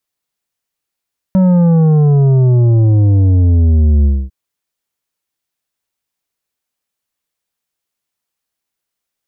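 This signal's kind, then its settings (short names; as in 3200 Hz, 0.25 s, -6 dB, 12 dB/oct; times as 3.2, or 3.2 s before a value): sub drop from 190 Hz, over 2.95 s, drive 8.5 dB, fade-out 0.25 s, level -7.5 dB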